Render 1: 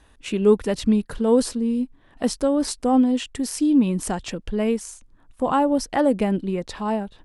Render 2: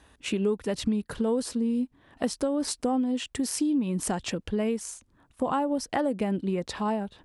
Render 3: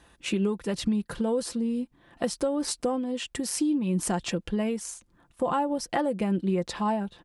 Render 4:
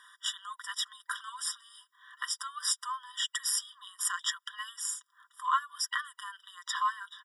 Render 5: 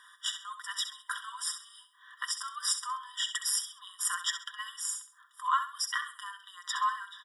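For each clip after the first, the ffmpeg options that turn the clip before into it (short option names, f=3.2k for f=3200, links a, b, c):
-af "highpass=60,acompressor=threshold=-24dB:ratio=5"
-af "aecho=1:1:5.8:0.43"
-filter_complex "[0:a]asplit=2[a][b];[b]alimiter=limit=-21.5dB:level=0:latency=1:release=261,volume=1dB[c];[a][c]amix=inputs=2:normalize=0,afftfilt=real='re*eq(mod(floor(b*sr/1024/970),2),1)':imag='im*eq(mod(floor(b*sr/1024/970),2),1)':win_size=1024:overlap=0.75"
-af "aecho=1:1:66|132|198:0.316|0.0949|0.0285"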